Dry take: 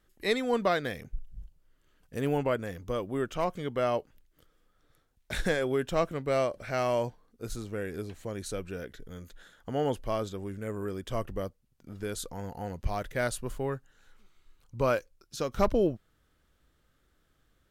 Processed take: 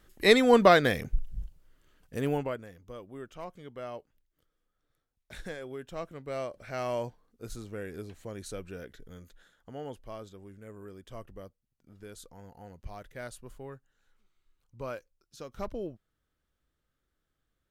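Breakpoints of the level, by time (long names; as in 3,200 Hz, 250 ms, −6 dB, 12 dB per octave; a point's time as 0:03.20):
0:01.27 +8 dB
0:02.34 −1 dB
0:02.71 −12 dB
0:05.83 −12 dB
0:06.93 −4 dB
0:09.11 −4 dB
0:09.82 −11.5 dB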